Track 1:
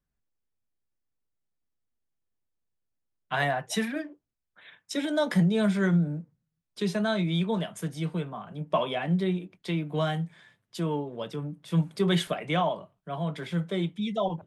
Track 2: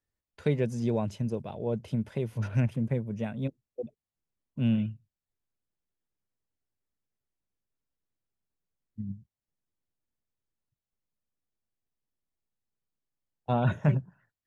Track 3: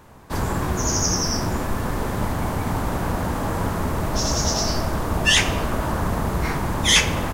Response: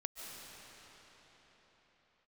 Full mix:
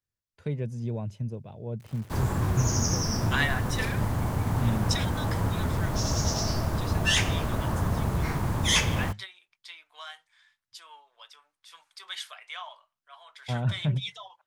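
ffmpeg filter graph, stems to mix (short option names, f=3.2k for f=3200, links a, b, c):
-filter_complex "[0:a]highpass=f=1k:w=0.5412,highpass=f=1k:w=1.3066,equalizer=f=5.2k:t=o:w=0.93:g=7,volume=2.5dB[a];[1:a]acontrast=54,volume=-14dB,asplit=2[b][c];[2:a]acrusher=bits=6:mix=0:aa=0.000001,adelay=1800,volume=-7.5dB[d];[c]apad=whole_len=638120[e];[a][e]sidechaingate=range=-10dB:threshold=-56dB:ratio=16:detection=peak[f];[f][b][d]amix=inputs=3:normalize=0,equalizer=f=110:t=o:w=1.1:g=9"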